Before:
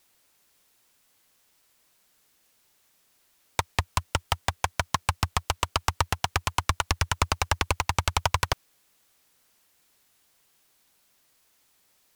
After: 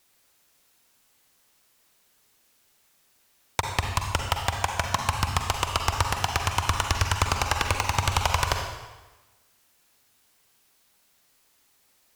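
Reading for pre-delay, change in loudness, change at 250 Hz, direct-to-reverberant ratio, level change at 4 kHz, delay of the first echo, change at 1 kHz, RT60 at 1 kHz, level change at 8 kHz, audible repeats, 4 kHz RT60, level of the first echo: 40 ms, +2.0 dB, +1.5 dB, 3.0 dB, +1.5 dB, none, +2.0 dB, 1.2 s, +1.5 dB, none, 1.0 s, none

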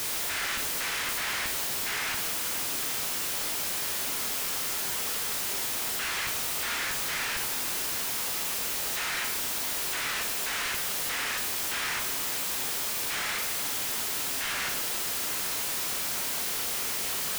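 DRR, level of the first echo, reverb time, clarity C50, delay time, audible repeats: 2.5 dB, none, 0.85 s, 7.0 dB, none, none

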